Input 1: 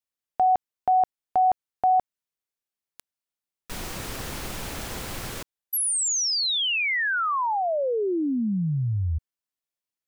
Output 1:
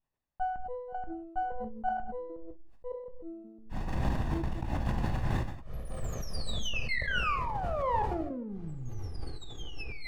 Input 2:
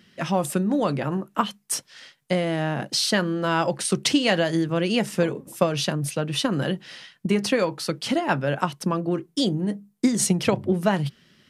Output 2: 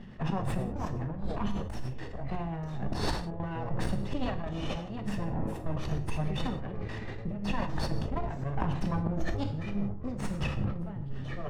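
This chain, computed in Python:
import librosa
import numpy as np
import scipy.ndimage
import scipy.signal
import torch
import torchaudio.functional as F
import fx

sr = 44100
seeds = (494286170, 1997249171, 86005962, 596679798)

y = fx.lower_of_two(x, sr, delay_ms=1.1)
y = fx.tilt_eq(y, sr, slope=-2.5)
y = fx.auto_swell(y, sr, attack_ms=160.0)
y = fx.lowpass(y, sr, hz=1200.0, slope=6)
y = fx.low_shelf(y, sr, hz=150.0, db=-4.0)
y = fx.step_gate(y, sr, bpm=159, pattern='xxxxxxx.x.xxx', floor_db=-24.0, edge_ms=4.5)
y = fx.over_compress(y, sr, threshold_db=-35.0, ratio=-1.0)
y = fx.echo_pitch(y, sr, ms=88, semitones=-7, count=3, db_per_echo=-6.0)
y = fx.rev_gated(y, sr, seeds[0], gate_ms=210, shape='falling', drr_db=6.0)
y = fx.sustainer(y, sr, db_per_s=63.0)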